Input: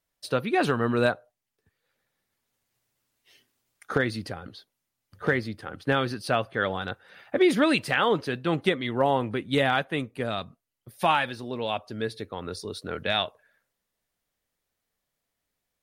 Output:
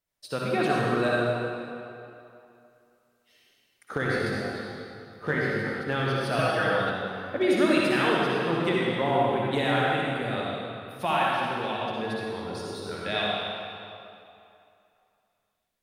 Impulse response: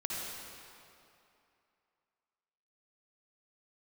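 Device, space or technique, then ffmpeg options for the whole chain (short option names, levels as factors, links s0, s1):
stairwell: -filter_complex "[1:a]atrim=start_sample=2205[s0];[0:a][s0]afir=irnorm=-1:irlink=0,asettb=1/sr,asplit=3[s1][s2][s3];[s1]atrim=end=4.094[s4];[s2]atrim=start=4.09:end=5.82,asetpts=PTS-STARTPTS,afade=t=in:d=0.004:c=qsin,afade=t=out:st=1.726:d=0.004:c=qsin,asplit=2[s5][s6];[s6]adelay=20,volume=0.562[s7];[s5][s7]amix=inputs=2:normalize=0,atrim=end_sample=76293[s8];[s3]atrim=start=5.816[s9];[s4][s8]acrossfade=d=0.004:c1=hsin:c2=qsin[s10];[s10][s9]acrossfade=d=0.004:c1=qsin:c2=hsin,asettb=1/sr,asplit=3[s11][s12][s13];[s11]atrim=end=6.384[s14];[s12]atrim=start=6.38:end=6.9,asetpts=PTS-STARTPTS,afade=t=in:d=0.004:c=qsin,afade=t=out:st=0.516:d=0.004:c=qsin,aecho=1:1:6.3:0.99,atrim=end_sample=22932[s15];[s13]atrim=start=6.896[s16];[s14][s15]acrossfade=d=0.004:c1=hsin:c2=qsin[s17];[s17][s16]acrossfade=d=0.004:c1=qsin:c2=hsin,volume=0.668"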